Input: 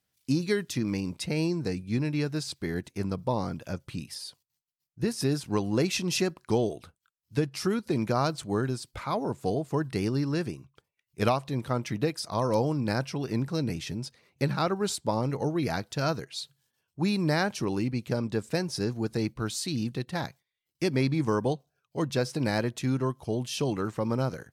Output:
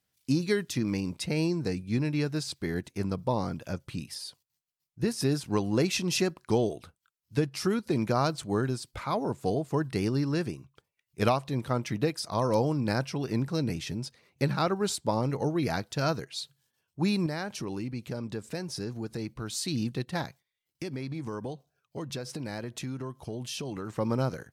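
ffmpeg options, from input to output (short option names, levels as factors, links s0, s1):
-filter_complex "[0:a]asettb=1/sr,asplit=3[s0][s1][s2];[s0]atrim=end=17.264[s3];[s1]atrim=start=17.26:end=19.53,asetpts=PTS-STARTPTS,afade=t=in:d=0.004:c=qsin,afade=t=out:st=2.266:d=0.004:c=qsin,acompressor=threshold=0.0178:ratio=2:attack=3.2:release=140:knee=1:detection=peak[s4];[s2]atrim=start=19.526[s5];[s3][s4]acrossfade=d=0.004:c1=hsin:c2=qsin[s6];[s6][s5]acrossfade=d=0.004:c1=qsin:c2=hsin,asettb=1/sr,asplit=3[s7][s8][s9];[s7]atrim=end=20.224[s10];[s8]atrim=start=20.22:end=23.9,asetpts=PTS-STARTPTS,afade=t=in:d=0.004:c=qsin,afade=t=out:st=3.676:d=0.004:c=qsin,acompressor=threshold=0.0251:ratio=6:attack=3.2:release=140:knee=1:detection=peak[s11];[s9]atrim=start=23.896[s12];[s10][s11]acrossfade=d=0.004:c1=hsin:c2=qsin[s13];[s13][s12]acrossfade=d=0.004:c1=qsin:c2=hsin"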